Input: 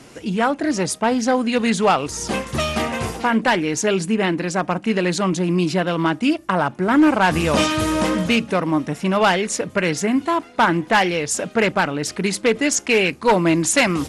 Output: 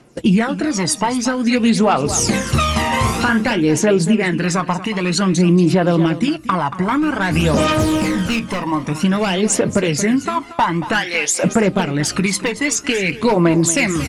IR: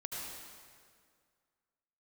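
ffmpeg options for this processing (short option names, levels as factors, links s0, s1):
-filter_complex "[0:a]asplit=3[s0][s1][s2];[s0]afade=t=out:st=10.99:d=0.02[s3];[s1]highpass=700,afade=t=in:st=10.99:d=0.02,afade=t=out:st=11.42:d=0.02[s4];[s2]afade=t=in:st=11.42:d=0.02[s5];[s3][s4][s5]amix=inputs=3:normalize=0,agate=range=0.0708:threshold=0.0224:ratio=16:detection=peak,acompressor=threshold=0.0447:ratio=12,flanger=delay=5.6:depth=3.6:regen=-56:speed=0.17:shape=sinusoidal,asettb=1/sr,asplit=3[s6][s7][s8];[s6]atrim=end=7.734[s9];[s7]atrim=start=7.73:end=8.67,asetpts=PTS-STARTPTS,afade=t=in:d=0.004:c=qsin,afade=t=out:st=0.936:d=0.004:c=qsin,asoftclip=type=hard:threshold=0.0237[s10];[s8]atrim=start=8.666[s11];[s9][s10]acrossfade=d=0.004:c1=hsin:c2=qsin[s12];[s12][s11]acrossfade=d=0.004:c1=qsin:c2=hsin,aphaser=in_gain=1:out_gain=1:delay=1.1:decay=0.59:speed=0.52:type=triangular,asplit=3[s13][s14][s15];[s13]afade=t=out:st=2.84:d=0.02[s16];[s14]asplit=2[s17][s18];[s18]adelay=46,volume=0.447[s19];[s17][s19]amix=inputs=2:normalize=0,afade=t=in:st=2.84:d=0.02,afade=t=out:st=3.52:d=0.02[s20];[s15]afade=t=in:st=3.52:d=0.02[s21];[s16][s20][s21]amix=inputs=3:normalize=0,aecho=1:1:230:0.188,alimiter=level_in=10.6:limit=0.891:release=50:level=0:latency=1,volume=0.596"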